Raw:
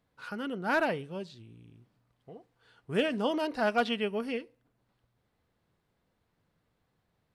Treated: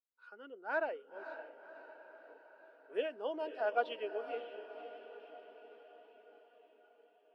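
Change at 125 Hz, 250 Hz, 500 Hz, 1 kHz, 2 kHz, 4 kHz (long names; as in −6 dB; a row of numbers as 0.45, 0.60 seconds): below −35 dB, −18.5 dB, −5.5 dB, −6.5 dB, −8.0 dB, −13.0 dB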